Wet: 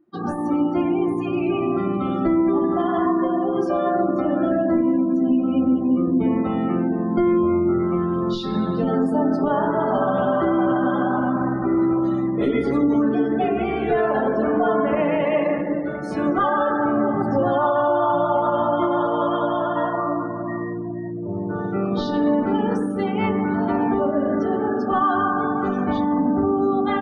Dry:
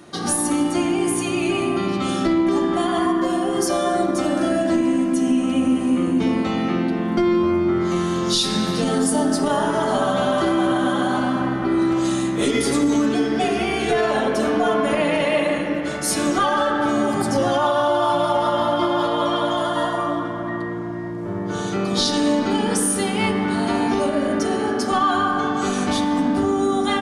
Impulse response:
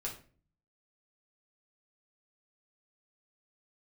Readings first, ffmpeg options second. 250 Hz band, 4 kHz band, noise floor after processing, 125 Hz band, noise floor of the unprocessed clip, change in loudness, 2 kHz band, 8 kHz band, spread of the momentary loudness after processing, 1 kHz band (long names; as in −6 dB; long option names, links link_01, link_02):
0.0 dB, −14.5 dB, −28 dBFS, 0.0 dB, −26 dBFS, −0.5 dB, −4.5 dB, below −30 dB, 5 LU, −0.5 dB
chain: -af "afftdn=noise_reduction=28:noise_floor=-28,lowpass=1800"